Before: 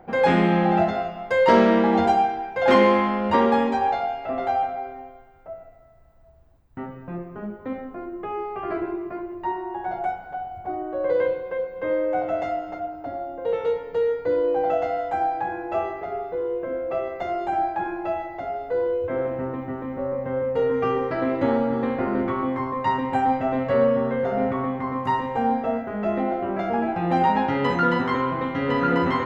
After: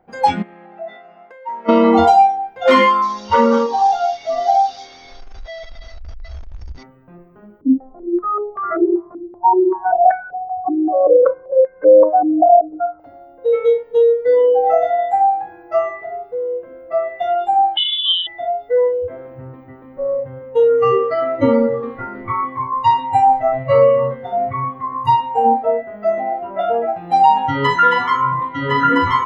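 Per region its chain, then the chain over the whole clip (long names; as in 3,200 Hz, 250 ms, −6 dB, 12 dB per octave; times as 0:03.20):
0:00.42–0:01.69: high-pass filter 270 Hz + high shelf with overshoot 2,800 Hz −6.5 dB, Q 1.5 + downward compressor 10 to 1, threshold −28 dBFS
0:03.02–0:06.83: linear delta modulator 32 kbit/s, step −27.5 dBFS + high-shelf EQ 4,700 Hz −11 dB + saturating transformer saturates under 620 Hz
0:07.61–0:13.00: upward compression, threshold −38 dBFS + high-frequency loss of the air 460 metres + low-pass on a step sequencer 5.2 Hz 300–1,700 Hz
0:17.77–0:18.27: parametric band 1,500 Hz −8.5 dB 0.81 octaves + voice inversion scrambler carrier 3,800 Hz
whole clip: noise reduction from a noise print of the clip's start 20 dB; boost into a limiter +11.5 dB; level −1 dB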